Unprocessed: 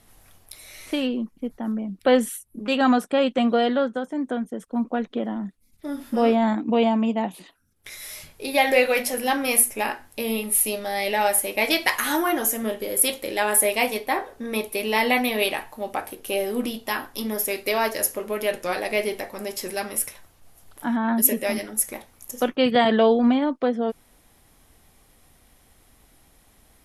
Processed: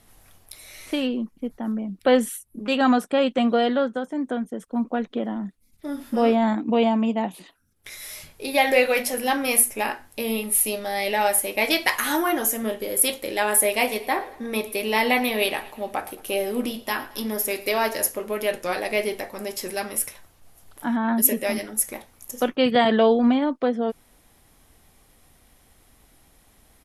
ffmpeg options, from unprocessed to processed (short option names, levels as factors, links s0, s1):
-filter_complex "[0:a]asplit=3[s0][s1][s2];[s0]afade=t=out:st=13.73:d=0.02[s3];[s1]aecho=1:1:111|222|333|444:0.119|0.0535|0.0241|0.0108,afade=t=in:st=13.73:d=0.02,afade=t=out:st=18.08:d=0.02[s4];[s2]afade=t=in:st=18.08:d=0.02[s5];[s3][s4][s5]amix=inputs=3:normalize=0"